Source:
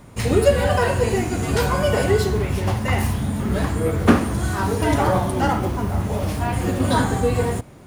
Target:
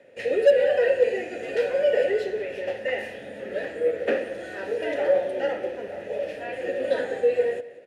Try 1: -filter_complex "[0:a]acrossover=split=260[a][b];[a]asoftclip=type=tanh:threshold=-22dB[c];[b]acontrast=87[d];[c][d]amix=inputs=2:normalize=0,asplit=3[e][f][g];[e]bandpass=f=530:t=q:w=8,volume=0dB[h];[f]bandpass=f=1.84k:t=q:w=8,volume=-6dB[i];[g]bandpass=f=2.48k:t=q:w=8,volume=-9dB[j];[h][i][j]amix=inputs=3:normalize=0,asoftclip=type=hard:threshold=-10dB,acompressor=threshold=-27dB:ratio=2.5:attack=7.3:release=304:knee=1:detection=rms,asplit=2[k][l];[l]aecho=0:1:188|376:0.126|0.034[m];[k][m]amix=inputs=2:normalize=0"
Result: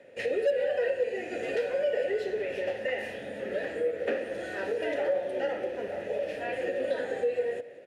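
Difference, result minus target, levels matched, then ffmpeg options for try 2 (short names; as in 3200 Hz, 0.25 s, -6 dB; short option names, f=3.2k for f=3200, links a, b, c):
compressor: peak gain reduction +10 dB
-filter_complex "[0:a]acrossover=split=260[a][b];[a]asoftclip=type=tanh:threshold=-22dB[c];[b]acontrast=87[d];[c][d]amix=inputs=2:normalize=0,asplit=3[e][f][g];[e]bandpass=f=530:t=q:w=8,volume=0dB[h];[f]bandpass=f=1.84k:t=q:w=8,volume=-6dB[i];[g]bandpass=f=2.48k:t=q:w=8,volume=-9dB[j];[h][i][j]amix=inputs=3:normalize=0,asoftclip=type=hard:threshold=-10dB,asplit=2[k][l];[l]aecho=0:1:188|376:0.126|0.034[m];[k][m]amix=inputs=2:normalize=0"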